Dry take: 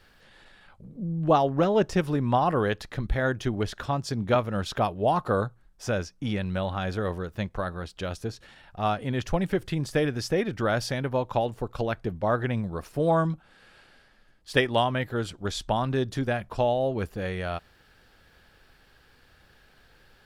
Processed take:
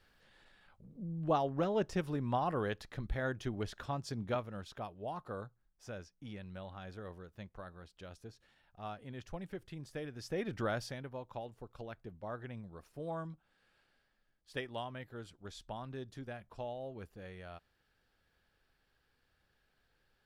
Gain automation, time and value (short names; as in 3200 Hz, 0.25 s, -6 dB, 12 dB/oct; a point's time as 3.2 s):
4.19 s -10.5 dB
4.71 s -18 dB
10.1 s -18 dB
10.56 s -7.5 dB
11.14 s -18 dB